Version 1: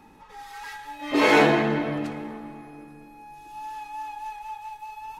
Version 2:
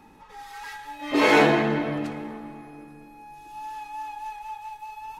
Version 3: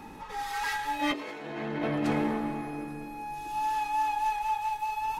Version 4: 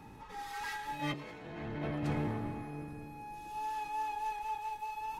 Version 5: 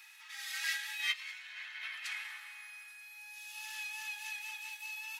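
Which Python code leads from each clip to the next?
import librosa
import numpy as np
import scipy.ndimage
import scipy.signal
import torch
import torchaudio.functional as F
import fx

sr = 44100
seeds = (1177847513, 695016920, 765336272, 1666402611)

y1 = x
y2 = fx.over_compress(y1, sr, threshold_db=-32.0, ratio=-1.0)
y2 = F.gain(torch.from_numpy(y2), 1.5).numpy()
y3 = fx.octave_divider(y2, sr, octaves=1, level_db=1.0)
y3 = F.gain(torch.from_numpy(y3), -8.5).numpy()
y4 = scipy.signal.sosfilt(scipy.signal.cheby2(4, 70, 420.0, 'highpass', fs=sr, output='sos'), y3)
y4 = F.gain(torch.from_numpy(y4), 10.0).numpy()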